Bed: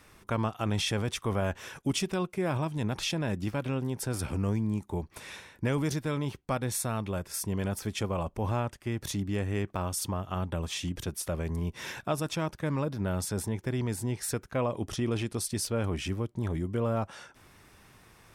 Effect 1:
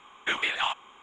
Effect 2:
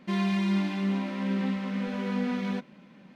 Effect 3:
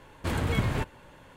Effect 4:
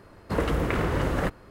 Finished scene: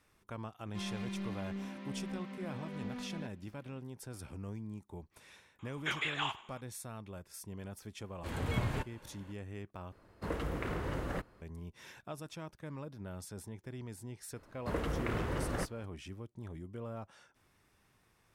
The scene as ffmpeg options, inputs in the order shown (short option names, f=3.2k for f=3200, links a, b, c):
-filter_complex "[4:a]asplit=2[a][b];[0:a]volume=-14dB[c];[2:a]aeval=exprs='clip(val(0),-1,0.0473)':c=same[d];[1:a]aecho=1:1:97|194|291:0.133|0.0493|0.0183[e];[3:a]dynaudnorm=f=220:g=3:m=12.5dB[f];[c]asplit=2[g][h];[g]atrim=end=9.924[i];[a]atrim=end=1.5,asetpts=PTS-STARTPTS,volume=-11.5dB[j];[h]atrim=start=11.416[k];[d]atrim=end=3.15,asetpts=PTS-STARTPTS,volume=-13dB,afade=t=in:d=0.004:c=hsin,afade=t=out:st=3.146:d=0.004:c=hsin,adelay=670[l];[e]atrim=end=1.02,asetpts=PTS-STARTPTS,volume=-8dB,afade=t=in:d=0.004:c=hsin,afade=t=out:st=1.016:d=0.004:c=hsin,adelay=5590[m];[f]atrim=end=1.36,asetpts=PTS-STARTPTS,volume=-17.5dB,afade=t=in:d=0.004:c=hsin,afade=t=out:st=1.356:d=0.004:c=hsin,adelay=7990[n];[b]atrim=end=1.5,asetpts=PTS-STARTPTS,volume=-10dB,afade=t=in:d=0.004:c=hsin,afade=t=out:st=1.496:d=0.004:c=hsin,adelay=14360[o];[i][j]acrossfade=d=0.004:c1=hsin:c2=hsin[p];[p][k]acrossfade=d=0.004:c1=hsin:c2=hsin[q];[q][l][m][n][o]amix=inputs=5:normalize=0"